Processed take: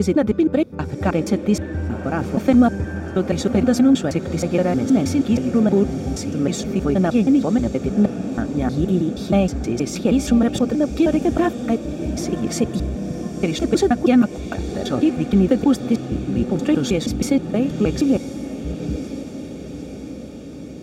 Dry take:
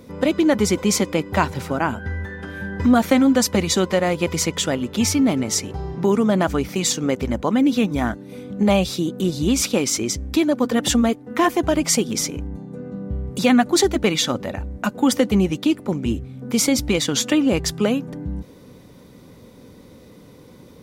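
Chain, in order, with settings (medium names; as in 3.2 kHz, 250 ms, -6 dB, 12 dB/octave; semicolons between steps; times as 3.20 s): slices played last to first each 158 ms, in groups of 5; tilt EQ -2.5 dB/octave; comb of notches 1 kHz; echo that smears into a reverb 1043 ms, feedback 63%, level -11.5 dB; trim -2.5 dB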